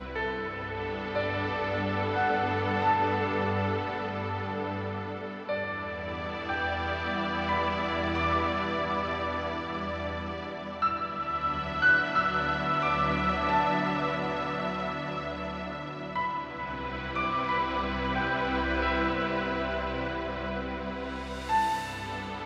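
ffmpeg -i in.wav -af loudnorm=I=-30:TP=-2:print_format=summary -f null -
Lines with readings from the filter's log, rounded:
Input Integrated:    -29.9 LUFS
Input True Peak:     -13.8 dBTP
Input LRA:             4.5 LU
Input Threshold:     -39.9 LUFS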